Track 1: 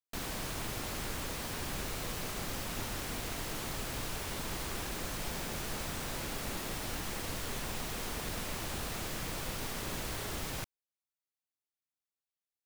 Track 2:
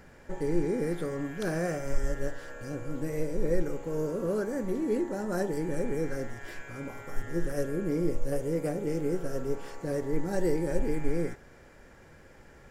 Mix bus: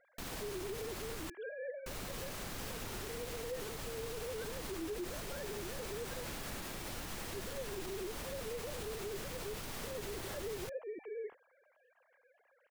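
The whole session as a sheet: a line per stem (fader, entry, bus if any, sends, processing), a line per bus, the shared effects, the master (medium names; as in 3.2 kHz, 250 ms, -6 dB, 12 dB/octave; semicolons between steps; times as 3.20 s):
-3.5 dB, 0.05 s, muted 1.30–1.86 s, no send, none
-13.0 dB, 0.00 s, no send, formants replaced by sine waves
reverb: none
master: peak limiter -33 dBFS, peak gain reduction 11 dB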